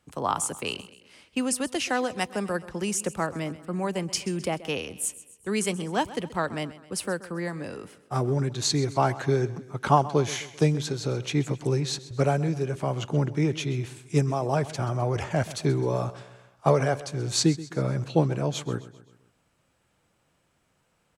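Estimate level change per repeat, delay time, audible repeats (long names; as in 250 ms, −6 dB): −6.0 dB, 130 ms, 3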